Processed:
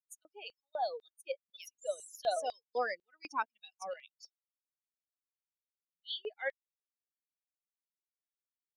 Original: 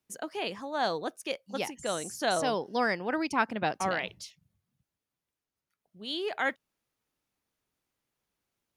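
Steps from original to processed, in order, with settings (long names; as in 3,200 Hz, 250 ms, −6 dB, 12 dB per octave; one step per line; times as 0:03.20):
spectral dynamics exaggerated over time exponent 3
0:03.40–0:04.23: output level in coarse steps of 10 dB
auto-filter high-pass square 2 Hz 550–3,700 Hz
level −4.5 dB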